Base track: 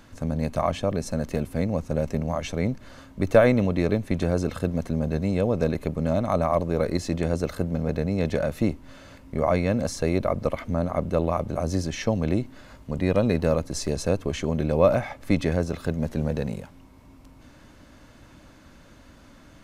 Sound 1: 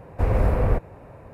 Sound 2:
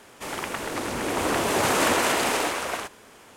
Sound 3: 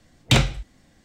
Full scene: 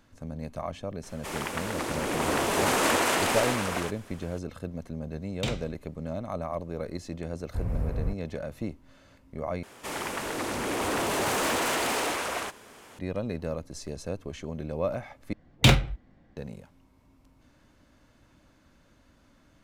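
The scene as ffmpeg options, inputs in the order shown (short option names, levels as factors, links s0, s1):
-filter_complex "[2:a]asplit=2[s0][s1];[3:a]asplit=2[s2][s3];[0:a]volume=0.299[s4];[1:a]bass=f=250:g=9,treble=f=4000:g=9[s5];[s1]asoftclip=type=tanh:threshold=0.0708[s6];[s3]adynamicsmooth=sensitivity=3:basefreq=1900[s7];[s4]asplit=3[s8][s9][s10];[s8]atrim=end=9.634[s11];[s6]atrim=end=3.36,asetpts=PTS-STARTPTS,volume=0.944[s12];[s9]atrim=start=12.986:end=15.334[s13];[s7]atrim=end=1.04,asetpts=PTS-STARTPTS,volume=0.891[s14];[s10]atrim=start=16.366[s15];[s0]atrim=end=3.36,asetpts=PTS-STARTPTS,volume=0.75,afade=t=in:d=0.004:c=hsin,afade=t=out:st=3.356:d=0.004:c=hsin,adelay=1030[s16];[s2]atrim=end=1.04,asetpts=PTS-STARTPTS,volume=0.188,afade=t=in:d=0.004:c=hsin,afade=t=out:st=1.036:d=0.004:c=hsin,adelay=5120[s17];[s5]atrim=end=1.33,asetpts=PTS-STARTPTS,volume=0.126,afade=t=in:d=0.004:c=hsin,afade=t=out:st=1.326:d=0.004:c=hsin,adelay=7350[s18];[s11][s12]acrossfade=d=0.004:c1=hsin:c2=hsin[s19];[s19][s13]acrossfade=d=0.004:c1=hsin:c2=hsin[s20];[s20][s14]acrossfade=d=0.004:c1=hsin:c2=hsin[s21];[s21][s15]acrossfade=d=0.004:c1=hsin:c2=hsin[s22];[s22][s16][s17][s18]amix=inputs=4:normalize=0"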